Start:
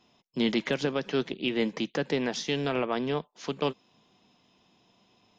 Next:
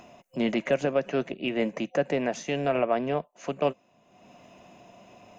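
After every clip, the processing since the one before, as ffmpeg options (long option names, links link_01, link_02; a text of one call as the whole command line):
ffmpeg -i in.wav -af "superequalizer=8b=2.82:13b=0.282:14b=0.316,acompressor=mode=upward:threshold=-40dB:ratio=2.5" out.wav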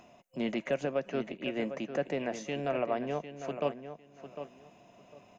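ffmpeg -i in.wav -filter_complex "[0:a]asplit=2[link_01][link_02];[link_02]adelay=752,lowpass=frequency=3600:poles=1,volume=-10dB,asplit=2[link_03][link_04];[link_04]adelay=752,lowpass=frequency=3600:poles=1,volume=0.21,asplit=2[link_05][link_06];[link_06]adelay=752,lowpass=frequency=3600:poles=1,volume=0.21[link_07];[link_01][link_03][link_05][link_07]amix=inputs=4:normalize=0,volume=-6.5dB" out.wav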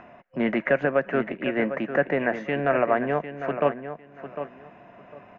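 ffmpeg -i in.wav -af "lowpass=frequency=1700:width_type=q:width=3,volume=8dB" out.wav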